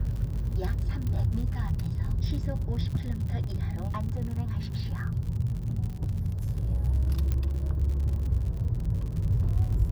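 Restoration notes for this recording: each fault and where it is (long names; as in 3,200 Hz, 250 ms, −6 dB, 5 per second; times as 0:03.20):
surface crackle 75 per second −35 dBFS
0:01.07: click −22 dBFS
0:03.44: drop-out 2.5 ms
0:07.32: click −17 dBFS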